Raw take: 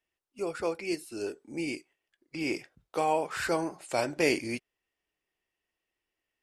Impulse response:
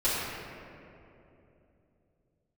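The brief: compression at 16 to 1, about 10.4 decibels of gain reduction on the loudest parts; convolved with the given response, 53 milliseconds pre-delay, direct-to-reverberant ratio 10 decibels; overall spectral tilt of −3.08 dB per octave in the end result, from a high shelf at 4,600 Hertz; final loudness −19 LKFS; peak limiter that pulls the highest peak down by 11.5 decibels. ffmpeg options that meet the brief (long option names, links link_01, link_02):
-filter_complex "[0:a]highshelf=frequency=4600:gain=9,acompressor=threshold=-29dB:ratio=16,alimiter=level_in=5dB:limit=-24dB:level=0:latency=1,volume=-5dB,asplit=2[link_01][link_02];[1:a]atrim=start_sample=2205,adelay=53[link_03];[link_02][link_03]afir=irnorm=-1:irlink=0,volume=-22dB[link_04];[link_01][link_04]amix=inputs=2:normalize=0,volume=20.5dB"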